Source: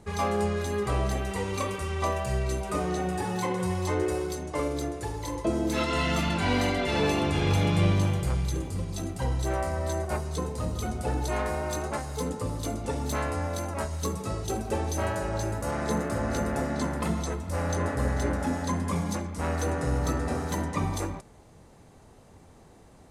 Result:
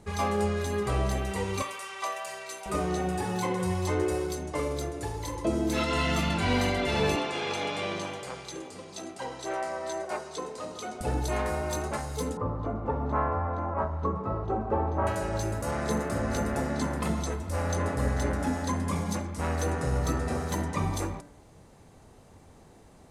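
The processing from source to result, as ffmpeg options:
ffmpeg -i in.wav -filter_complex "[0:a]asettb=1/sr,asplit=3[link_01][link_02][link_03];[link_01]atrim=end=1.624[link_04];[link_02]atrim=start=1.62:end=2.66,asetpts=PTS-STARTPTS,afade=type=in:duration=0.004:curve=qsin,afade=type=out:start_time=1.036:duration=0.004:curve=qsin,highpass=850[link_05];[link_03]atrim=start=2.656[link_06];[link_04][link_05]acrossfade=duration=0.004:curve1=hsin:curve2=qsin[link_07];[link_07][link_06]acrossfade=duration=0.004:curve1=qsin:curve2=hsin,asettb=1/sr,asplit=3[link_08][link_09][link_10];[link_08]atrim=end=7.164[link_11];[link_09]atrim=start=7.16:end=11.01,asetpts=PTS-STARTPTS,afade=type=in:duration=0.004:curve=qsin,afade=type=out:start_time=3.846:duration=0.004:curve=qsin,highpass=380,lowpass=7500[link_12];[link_10]atrim=start=11.006[link_13];[link_11][link_12]acrossfade=duration=0.004:curve1=hsin:curve2=qsin[link_14];[link_14][link_13]acrossfade=duration=0.004:curve1=qsin:curve2=hsin,asettb=1/sr,asplit=3[link_15][link_16][link_17];[link_15]atrim=end=12.374[link_18];[link_16]atrim=start=12.37:end=15.07,asetpts=PTS-STARTPTS,afade=type=in:duration=0.004:curve=qsin,afade=type=out:start_time=2.696:duration=0.004:curve=qsin,lowpass=frequency=1100:width_type=q:width=2.3[link_19];[link_17]atrim=start=15.066[link_20];[link_18][link_19]acrossfade=duration=0.004:curve1=hsin:curve2=qsin[link_21];[link_21][link_20]acrossfade=duration=0.004:curve1=qsin:curve2=hsin,bandreject=frequency=57.87:width_type=h:width=4,bandreject=frequency=115.74:width_type=h:width=4,bandreject=frequency=173.61:width_type=h:width=4,bandreject=frequency=231.48:width_type=h:width=4,bandreject=frequency=289.35:width_type=h:width=4,bandreject=frequency=347.22:width_type=h:width=4,bandreject=frequency=405.09:width_type=h:width=4,bandreject=frequency=462.96:width_type=h:width=4,bandreject=frequency=520.83:width_type=h:width=4,bandreject=frequency=578.7:width_type=h:width=4,bandreject=frequency=636.57:width_type=h:width=4,bandreject=frequency=694.44:width_type=h:width=4,bandreject=frequency=752.31:width_type=h:width=4,bandreject=frequency=810.18:width_type=h:width=4,bandreject=frequency=868.05:width_type=h:width=4,bandreject=frequency=925.92:width_type=h:width=4,bandreject=frequency=983.79:width_type=h:width=4,bandreject=frequency=1041.66:width_type=h:width=4,bandreject=frequency=1099.53:width_type=h:width=4,bandreject=frequency=1157.4:width_type=h:width=4,bandreject=frequency=1215.27:width_type=h:width=4,bandreject=frequency=1273.14:width_type=h:width=4,bandreject=frequency=1331.01:width_type=h:width=4,bandreject=frequency=1388.88:width_type=h:width=4,bandreject=frequency=1446.75:width_type=h:width=4,bandreject=frequency=1504.62:width_type=h:width=4,bandreject=frequency=1562.49:width_type=h:width=4,bandreject=frequency=1620.36:width_type=h:width=4,bandreject=frequency=1678.23:width_type=h:width=4,bandreject=frequency=1736.1:width_type=h:width=4,bandreject=frequency=1793.97:width_type=h:width=4,bandreject=frequency=1851.84:width_type=h:width=4,bandreject=frequency=1909.71:width_type=h:width=4,bandreject=frequency=1967.58:width_type=h:width=4,bandreject=frequency=2025.45:width_type=h:width=4" out.wav

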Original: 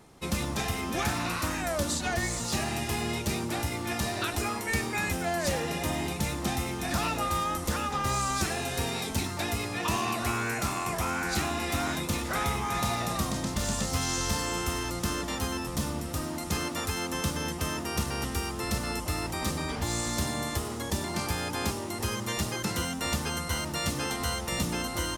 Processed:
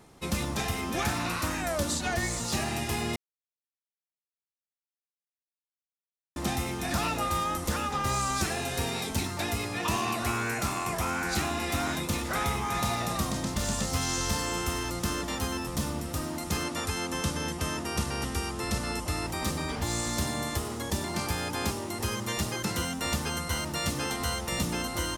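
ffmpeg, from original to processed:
ffmpeg -i in.wav -filter_complex "[0:a]asettb=1/sr,asplit=3[link_01][link_02][link_03];[link_01]atrim=end=16.644[link_04];[link_02]atrim=start=16.64:end=19.28,asetpts=PTS-STARTPTS,afade=type=in:duration=0.004:curve=qsin,afade=type=out:start_time=2.636:duration=0.004:curve=qsin,lowpass=frequency=12000:width=0.5412,lowpass=frequency=12000:width=1.3066[link_05];[link_03]atrim=start=19.276[link_06];[link_04][link_05]acrossfade=duration=0.004:curve1=hsin:curve2=qsin[link_07];[link_07][link_06]acrossfade=duration=0.004:curve1=qsin:curve2=hsin,asplit=3[link_08][link_09][link_10];[link_08]atrim=end=3.16,asetpts=PTS-STARTPTS,afade=type=out:start_time=3.156:duration=0.004:curve=hsin[link_11];[link_09]atrim=start=3.16:end=6.36,asetpts=PTS-STARTPTS,volume=0[link_12];[link_10]atrim=start=6.36,asetpts=PTS-STARTPTS,afade=type=in:duration=0.004:curve=hsin[link_13];[link_11][link_12][link_13]concat=n=3:v=0:a=1" out.wav

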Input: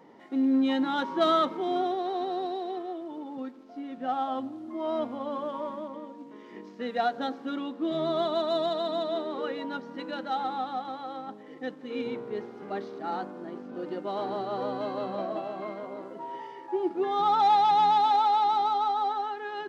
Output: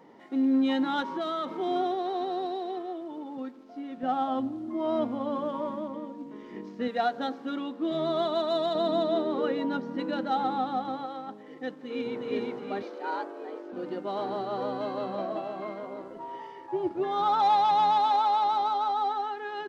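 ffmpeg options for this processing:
ffmpeg -i in.wav -filter_complex "[0:a]asettb=1/sr,asplit=3[link_01][link_02][link_03];[link_01]atrim=end=1.014[link_04];[link_02]atrim=start=1.01:end=1.49,asetpts=PTS-STARTPTS,afade=type=in:duration=0.004:curve=qsin,afade=type=out:start_time=0.476:duration=0.004:curve=qsin,acompressor=threshold=-28dB:ratio=6:attack=3.2:release=140:knee=1:detection=peak[link_05];[link_03]atrim=start=1.486[link_06];[link_04][link_05]acrossfade=duration=0.004:curve1=hsin:curve2=qsin[link_07];[link_07][link_06]acrossfade=duration=0.004:curve1=qsin:curve2=hsin,asettb=1/sr,asplit=3[link_08][link_09][link_10];[link_08]atrim=end=4.034[link_11];[link_09]atrim=start=4.03:end=6.88,asetpts=PTS-STARTPTS,afade=type=in:duration=0.004:curve=qsin,afade=type=out:start_time=2.846:duration=0.004:curve=qsin,lowshelf=frequency=250:gain=10.5[link_12];[link_10]atrim=start=6.876[link_13];[link_11][link_12]acrossfade=duration=0.004:curve1=hsin:curve2=qsin[link_14];[link_14][link_13]acrossfade=duration=0.004:curve1=qsin:curve2=hsin,asettb=1/sr,asplit=3[link_15][link_16][link_17];[link_15]atrim=end=8.754[link_18];[link_16]atrim=start=8.75:end=11.06,asetpts=PTS-STARTPTS,afade=type=in:duration=0.004:curve=qsin,afade=type=out:start_time=2.306:duration=0.004:curve=qsin,lowshelf=frequency=470:gain=9.5[link_19];[link_17]atrim=start=11.056[link_20];[link_18][link_19]acrossfade=duration=0.004:curve1=hsin:curve2=qsin[link_21];[link_21][link_20]acrossfade=duration=0.004:curve1=qsin:curve2=hsin,asplit=2[link_22][link_23];[link_23]afade=type=in:start_time=11.75:duration=0.01,afade=type=out:start_time=12.23:duration=0.01,aecho=0:1:360|720|1080|1440|1800|2160:0.944061|0.424827|0.191172|0.0860275|0.0387124|0.0174206[link_24];[link_22][link_24]amix=inputs=2:normalize=0,asettb=1/sr,asplit=3[link_25][link_26][link_27];[link_25]atrim=end=12.824[link_28];[link_26]atrim=start=12.82:end=13.73,asetpts=PTS-STARTPTS,afade=type=in:duration=0.004:curve=qsin,afade=type=out:start_time=0.906:duration=0.004:curve=qsin,afreqshift=98[link_29];[link_27]atrim=start=13.726[link_30];[link_28][link_29]acrossfade=duration=0.004:curve1=hsin:curve2=qsin[link_31];[link_31][link_30]acrossfade=duration=0.004:curve1=qsin:curve2=hsin,asettb=1/sr,asplit=3[link_32][link_33][link_34];[link_32]atrim=end=16.024[link_35];[link_33]atrim=start=16.02:end=18.92,asetpts=PTS-STARTPTS,afade=type=in:duration=0.004:curve=qsin,afade=type=out:start_time=2.896:duration=0.004:curve=qsin,tremolo=f=230:d=0.261[link_36];[link_34]atrim=start=18.916[link_37];[link_35][link_36]acrossfade=duration=0.004:curve1=hsin:curve2=qsin[link_38];[link_38][link_37]acrossfade=duration=0.004:curve1=qsin:curve2=hsin" out.wav

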